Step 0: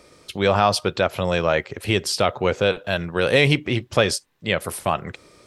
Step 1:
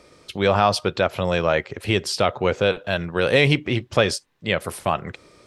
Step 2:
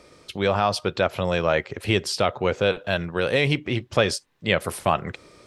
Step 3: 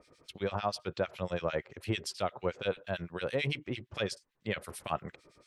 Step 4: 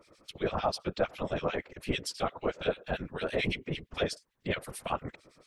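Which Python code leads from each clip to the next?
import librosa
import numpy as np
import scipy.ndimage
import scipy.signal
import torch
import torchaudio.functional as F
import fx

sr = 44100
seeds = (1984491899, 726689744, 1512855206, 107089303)

y1 = fx.high_shelf(x, sr, hz=9400.0, db=-8.5)
y2 = fx.rider(y1, sr, range_db=3, speed_s=0.5)
y2 = F.gain(torch.from_numpy(y2), -2.0).numpy()
y3 = fx.harmonic_tremolo(y2, sr, hz=8.9, depth_pct=100, crossover_hz=1600.0)
y3 = F.gain(torch.from_numpy(y3), -7.5).numpy()
y4 = fx.whisperise(y3, sr, seeds[0])
y4 = F.gain(torch.from_numpy(y4), 2.0).numpy()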